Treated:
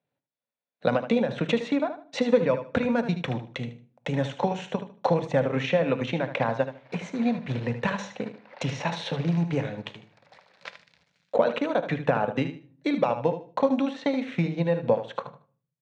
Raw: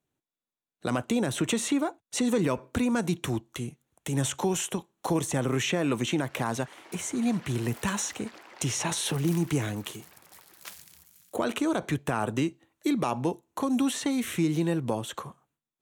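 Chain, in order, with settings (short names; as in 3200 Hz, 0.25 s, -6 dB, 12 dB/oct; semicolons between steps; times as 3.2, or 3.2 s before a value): bell 320 Hz -7.5 dB 0.29 oct; notches 50/100/150/200/250 Hz; transient shaper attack +6 dB, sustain -11 dB; speaker cabinet 140–3900 Hz, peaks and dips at 370 Hz -9 dB, 530 Hz +9 dB, 1200 Hz -5 dB, 3100 Hz -6 dB; feedback echo 76 ms, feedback 23%, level -10.5 dB; shoebox room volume 410 m³, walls furnished, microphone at 0.33 m; gain +2 dB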